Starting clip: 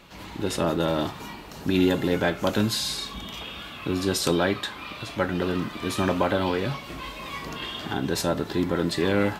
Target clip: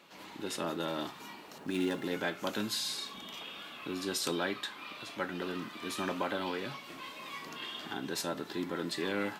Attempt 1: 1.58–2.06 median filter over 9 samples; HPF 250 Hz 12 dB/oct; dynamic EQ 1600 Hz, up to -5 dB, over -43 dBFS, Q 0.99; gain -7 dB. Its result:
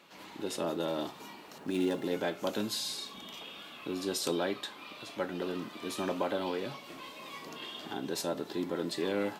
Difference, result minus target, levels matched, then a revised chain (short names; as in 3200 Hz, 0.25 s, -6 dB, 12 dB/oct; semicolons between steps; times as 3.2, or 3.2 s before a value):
2000 Hz band -4.5 dB
1.58–2.06 median filter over 9 samples; HPF 250 Hz 12 dB/oct; dynamic EQ 550 Hz, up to -5 dB, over -43 dBFS, Q 0.99; gain -7 dB